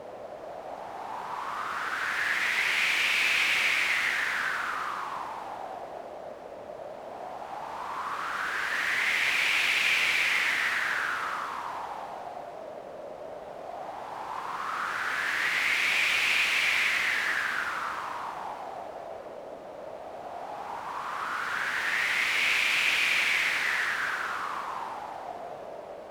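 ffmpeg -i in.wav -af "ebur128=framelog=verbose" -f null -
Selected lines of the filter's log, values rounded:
Integrated loudness:
  I:         -26.5 LUFS
  Threshold: -38.0 LUFS
Loudness range:
  LRA:        12.4 LU
  Threshold: -47.7 LUFS
  LRA low:   -37.4 LUFS
  LRA high:  -25.0 LUFS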